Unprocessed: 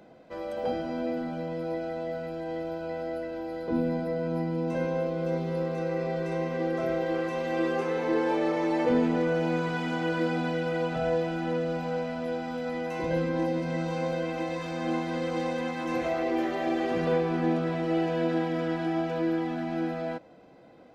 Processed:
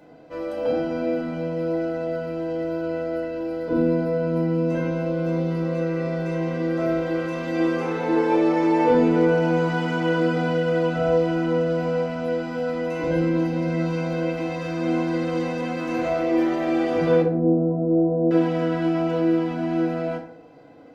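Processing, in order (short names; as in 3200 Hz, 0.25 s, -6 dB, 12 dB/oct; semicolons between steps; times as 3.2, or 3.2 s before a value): 17.22–18.31 inverse Chebyshev low-pass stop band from 3900 Hz, stop band 80 dB; FDN reverb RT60 0.62 s, low-frequency decay 1×, high-frequency decay 0.55×, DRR -2 dB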